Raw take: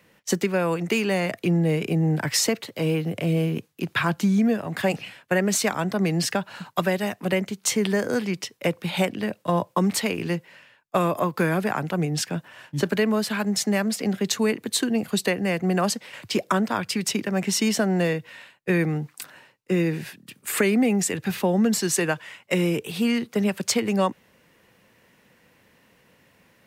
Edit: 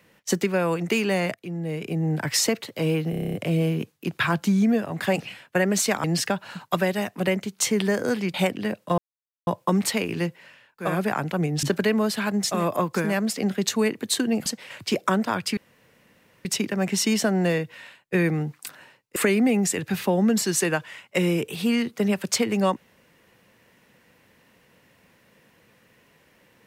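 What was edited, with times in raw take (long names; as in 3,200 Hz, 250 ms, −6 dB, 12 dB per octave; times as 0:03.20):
0:01.34–0:02.40: fade in linear, from −17 dB
0:03.10: stutter 0.03 s, 9 plays
0:05.80–0:06.09: remove
0:08.39–0:08.92: remove
0:09.56: splice in silence 0.49 s
0:10.98–0:11.48: move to 0:13.68, crossfade 0.24 s
0:12.22–0:12.76: remove
0:15.09–0:15.89: remove
0:17.00: splice in room tone 0.88 s
0:19.71–0:20.52: remove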